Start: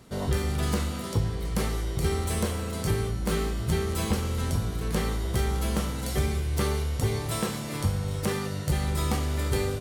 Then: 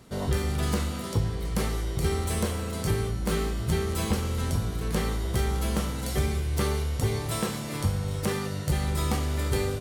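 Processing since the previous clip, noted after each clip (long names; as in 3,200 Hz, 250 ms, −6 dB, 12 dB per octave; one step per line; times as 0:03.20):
no processing that can be heard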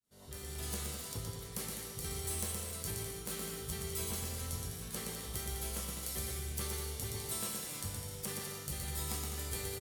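fade in at the beginning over 0.67 s
first-order pre-emphasis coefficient 0.8
bouncing-ball delay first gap 120 ms, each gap 0.7×, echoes 5
level −3.5 dB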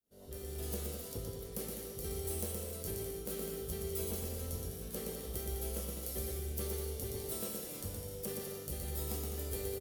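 octave-band graphic EQ 125/500/1,000/2,000/4,000/8,000 Hz −8/+5/−10/−8/−6/−9 dB
level +3.5 dB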